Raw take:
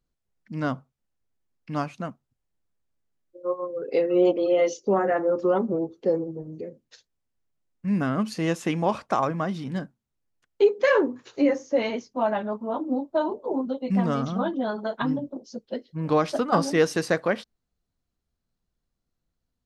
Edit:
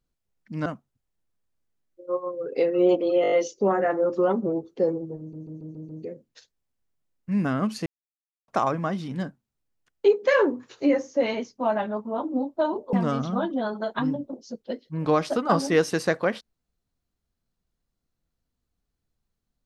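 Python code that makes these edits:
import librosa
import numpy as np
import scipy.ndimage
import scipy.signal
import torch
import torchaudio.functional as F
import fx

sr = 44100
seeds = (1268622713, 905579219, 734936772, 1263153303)

y = fx.edit(x, sr, fx.cut(start_s=0.66, length_s=1.36),
    fx.stutter(start_s=4.58, slice_s=0.02, count=6),
    fx.stutter(start_s=6.45, slice_s=0.14, count=6),
    fx.silence(start_s=8.42, length_s=0.62),
    fx.cut(start_s=13.49, length_s=0.47), tone=tone)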